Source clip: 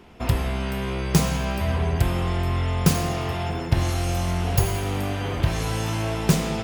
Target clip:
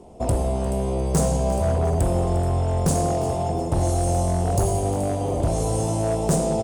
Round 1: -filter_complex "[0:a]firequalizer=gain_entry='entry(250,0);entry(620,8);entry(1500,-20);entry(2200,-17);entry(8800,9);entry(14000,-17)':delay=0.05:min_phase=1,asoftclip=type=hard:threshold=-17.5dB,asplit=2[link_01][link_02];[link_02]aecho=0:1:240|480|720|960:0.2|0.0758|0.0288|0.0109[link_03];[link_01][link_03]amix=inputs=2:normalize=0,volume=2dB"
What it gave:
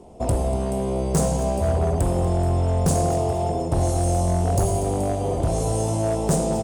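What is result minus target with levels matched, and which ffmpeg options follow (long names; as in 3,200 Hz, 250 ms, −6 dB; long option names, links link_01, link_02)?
echo 113 ms early
-filter_complex "[0:a]firequalizer=gain_entry='entry(250,0);entry(620,8);entry(1500,-20);entry(2200,-17);entry(8800,9);entry(14000,-17)':delay=0.05:min_phase=1,asoftclip=type=hard:threshold=-17.5dB,asplit=2[link_01][link_02];[link_02]aecho=0:1:353|706|1059|1412:0.2|0.0758|0.0288|0.0109[link_03];[link_01][link_03]amix=inputs=2:normalize=0,volume=2dB"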